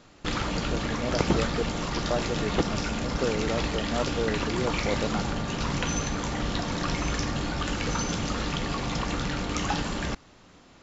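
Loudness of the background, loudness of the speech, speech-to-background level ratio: −29.5 LKFS, −32.5 LKFS, −3.0 dB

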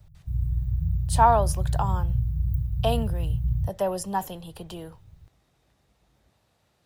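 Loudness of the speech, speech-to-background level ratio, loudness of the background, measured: −26.5 LKFS, 1.5 dB, −28.0 LKFS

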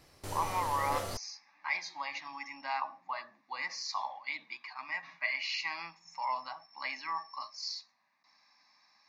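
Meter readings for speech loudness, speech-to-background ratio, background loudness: −37.5 LKFS, 2.5 dB, −40.0 LKFS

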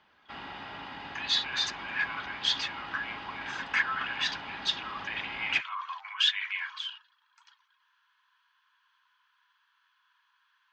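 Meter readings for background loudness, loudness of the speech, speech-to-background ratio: −41.5 LKFS, −31.0 LKFS, 10.5 dB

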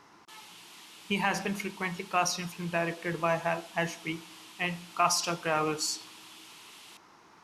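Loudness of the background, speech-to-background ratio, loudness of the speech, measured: −49.5 LKFS, 18.5 dB, −31.0 LKFS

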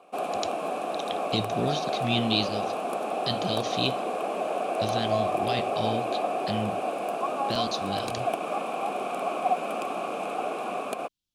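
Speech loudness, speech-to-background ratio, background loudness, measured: −31.5 LKFS, −1.5 dB, −30.0 LKFS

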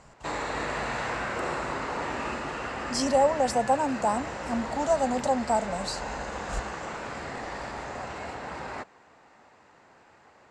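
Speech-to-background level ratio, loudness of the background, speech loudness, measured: 7.0 dB, −34.0 LKFS, −27.0 LKFS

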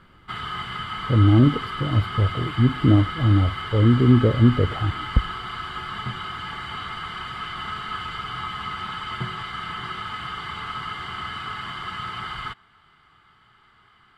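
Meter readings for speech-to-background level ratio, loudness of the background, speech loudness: 11.0 dB, −31.0 LKFS, −20.0 LKFS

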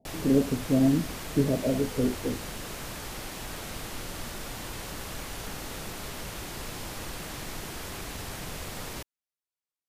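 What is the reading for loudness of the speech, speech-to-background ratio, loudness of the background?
−27.0 LKFS, 10.5 dB, −37.5 LKFS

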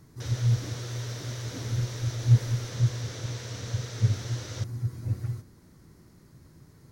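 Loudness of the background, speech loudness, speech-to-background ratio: −41.0 LKFS, −30.0 LKFS, 11.0 dB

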